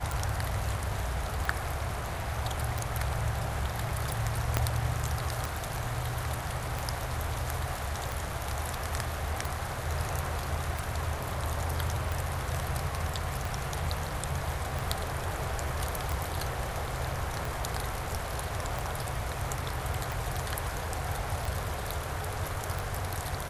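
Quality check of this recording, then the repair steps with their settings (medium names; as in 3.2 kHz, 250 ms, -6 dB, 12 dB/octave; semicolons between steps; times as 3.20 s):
tick 45 rpm
4.57 s: pop -9 dBFS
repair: de-click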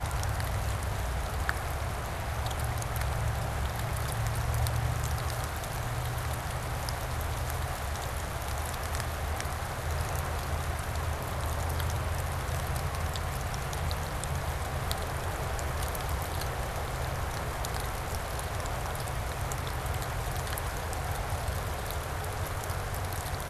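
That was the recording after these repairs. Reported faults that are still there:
4.57 s: pop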